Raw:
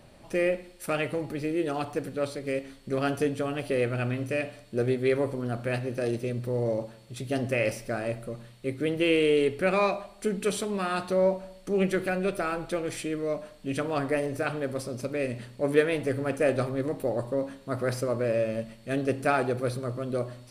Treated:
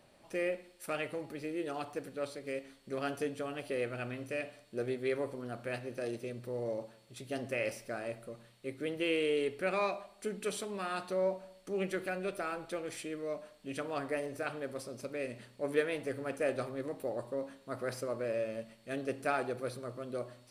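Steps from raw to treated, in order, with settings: low shelf 170 Hz -11.5 dB; gain -7 dB

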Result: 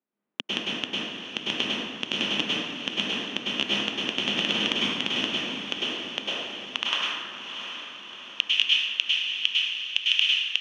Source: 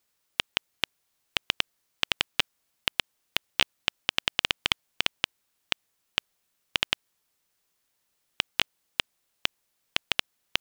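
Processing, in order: Wiener smoothing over 9 samples; tilt shelf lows +6 dB, about 1200 Hz; sample leveller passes 5; ladder low-pass 5600 Hz, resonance 25%; limiter -14.5 dBFS, peak gain reduction 7.5 dB; high-pass sweep 230 Hz -> 2700 Hz, 5.4–7.65; on a send: diffused feedback echo 0.692 s, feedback 56%, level -8.5 dB; on the sum: plate-style reverb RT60 1.6 s, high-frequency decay 0.55×, pre-delay 90 ms, DRR -6.5 dB; gain +4 dB

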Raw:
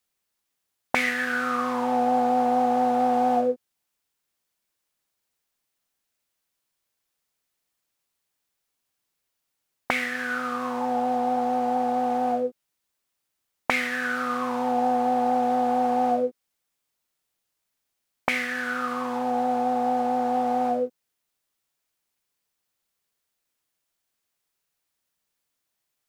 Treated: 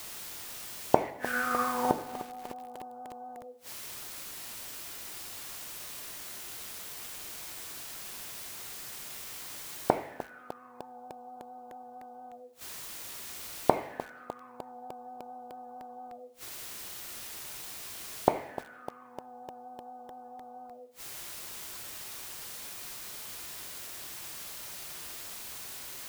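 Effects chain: spectral gate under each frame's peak -30 dB strong; 1.1–1.91 expander -14 dBFS; in parallel at -3.5 dB: requantised 8-bit, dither triangular; on the sum: flipped gate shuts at -19 dBFS, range -36 dB; on a send at -7 dB: reverb, pre-delay 3 ms; on the sum: lo-fi delay 0.302 s, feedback 80%, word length 7-bit, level -14 dB; gain +8 dB

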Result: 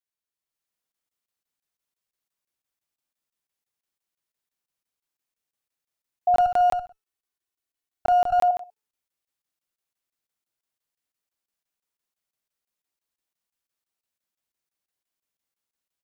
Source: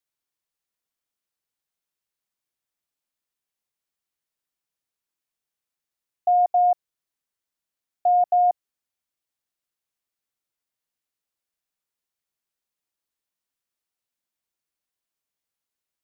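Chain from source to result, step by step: 6.34–8.42 minimum comb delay 2.7 ms; de-hum 435.1 Hz, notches 35; AGC gain up to 7.5 dB; feedback echo 64 ms, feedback 26%, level -7 dB; crackling interface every 0.17 s, samples 1024, zero, from 0.92; gain -8 dB

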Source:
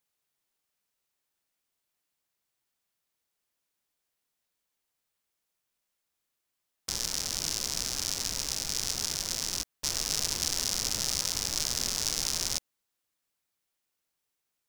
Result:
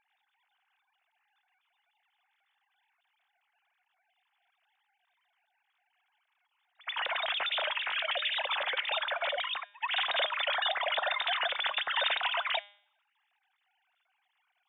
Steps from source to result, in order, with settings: sine-wave speech; de-hum 203.3 Hz, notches 38; reverse echo 83 ms -21 dB

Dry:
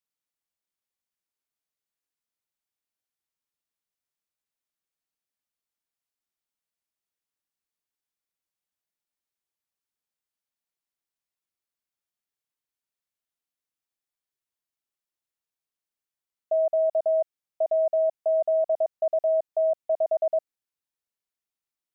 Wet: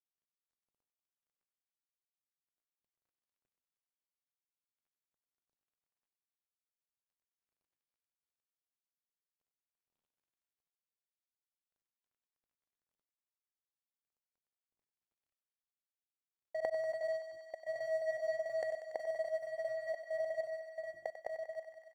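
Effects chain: median filter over 41 samples; notches 50/100/150/200/250/300/350 Hz; grains, grains 20/s, spray 0.1 s, pitch spread up and down by 0 st; echo 1.188 s -4.5 dB; step gate ".x.xxxxxx....." 91 bpm -24 dB; flipped gate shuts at -40 dBFS, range -24 dB; thinning echo 95 ms, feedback 83%, high-pass 450 Hz, level -10 dB; gain +13.5 dB

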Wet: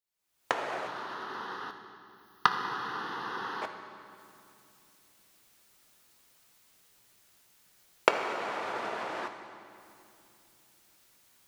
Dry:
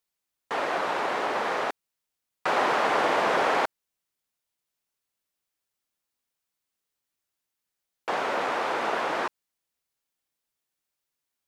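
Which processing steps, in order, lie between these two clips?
recorder AGC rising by 52 dB/s; 0.87–3.62 fixed phaser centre 2300 Hz, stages 6; reverb RT60 2.7 s, pre-delay 4 ms, DRR 5.5 dB; gain -10.5 dB

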